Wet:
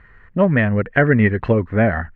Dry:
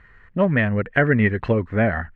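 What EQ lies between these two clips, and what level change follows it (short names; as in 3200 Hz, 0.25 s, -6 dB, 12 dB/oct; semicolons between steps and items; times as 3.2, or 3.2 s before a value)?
high shelf 3400 Hz -8.5 dB; +3.5 dB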